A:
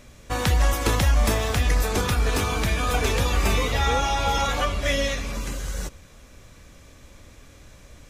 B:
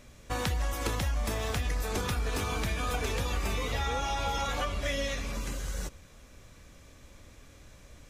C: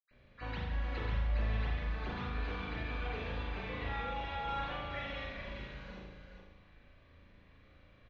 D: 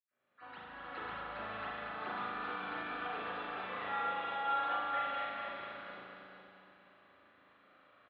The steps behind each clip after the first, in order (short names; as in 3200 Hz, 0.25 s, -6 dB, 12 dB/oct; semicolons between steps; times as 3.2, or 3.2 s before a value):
compressor, threshold -22 dBFS, peak gain reduction 7 dB; gain -5 dB
echo 0.419 s -7.5 dB; reverb RT60 0.95 s, pre-delay 76 ms
opening faded in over 1.23 s; speaker cabinet 350–3600 Hz, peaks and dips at 480 Hz -4 dB, 760 Hz +4 dB, 1300 Hz +9 dB, 2300 Hz -5 dB; feedback echo 0.233 s, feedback 58%, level -6 dB